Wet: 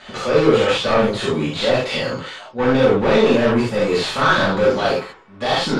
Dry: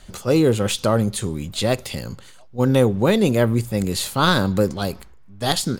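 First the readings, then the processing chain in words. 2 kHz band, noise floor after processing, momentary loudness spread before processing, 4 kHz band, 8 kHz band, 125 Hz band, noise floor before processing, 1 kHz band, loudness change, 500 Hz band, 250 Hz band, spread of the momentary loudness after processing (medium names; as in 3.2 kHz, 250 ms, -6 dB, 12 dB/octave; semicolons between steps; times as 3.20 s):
+7.0 dB, -42 dBFS, 11 LU, +3.0 dB, -7.0 dB, -4.0 dB, -44 dBFS, +5.5 dB, +2.5 dB, +5.0 dB, +0.5 dB, 10 LU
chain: bass shelf 140 Hz -8.5 dB; overdrive pedal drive 31 dB, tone 2.2 kHz, clips at -3 dBFS; low-pass 4.8 kHz 12 dB/octave; gated-style reverb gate 110 ms flat, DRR -7 dB; trim -12 dB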